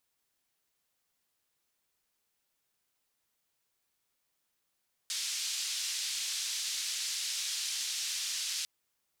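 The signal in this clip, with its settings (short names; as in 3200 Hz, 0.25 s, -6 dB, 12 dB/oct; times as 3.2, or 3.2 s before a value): noise band 3900–5600 Hz, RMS -35.5 dBFS 3.55 s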